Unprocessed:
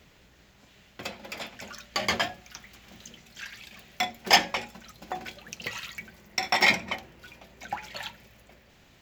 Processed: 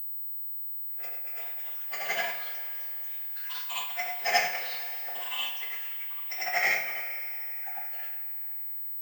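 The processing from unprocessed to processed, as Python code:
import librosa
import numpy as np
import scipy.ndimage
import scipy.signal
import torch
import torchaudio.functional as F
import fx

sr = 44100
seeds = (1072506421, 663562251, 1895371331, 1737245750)

y = fx.frame_reverse(x, sr, frame_ms=200.0)
y = fx.highpass(y, sr, hz=650.0, slope=6)
y = fx.fixed_phaser(y, sr, hz=1000.0, stages=6)
y = 10.0 ** (-20.0 / 20.0) * np.tanh(y / 10.0 ** (-20.0 / 20.0))
y = fx.echo_pitch(y, sr, ms=688, semitones=6, count=3, db_per_echo=-6.0)
y = fx.power_curve(y, sr, exponent=1.4)
y = fx.rev_double_slope(y, sr, seeds[0], early_s=0.27, late_s=3.6, knee_db=-20, drr_db=-6.5)
y = fx.pwm(y, sr, carrier_hz=16000.0)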